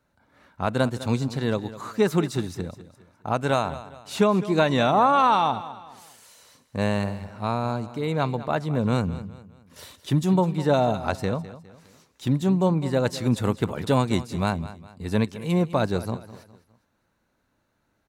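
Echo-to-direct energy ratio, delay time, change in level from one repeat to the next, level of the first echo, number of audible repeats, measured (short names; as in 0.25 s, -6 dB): -15.0 dB, 0.205 s, -8.0 dB, -15.5 dB, 3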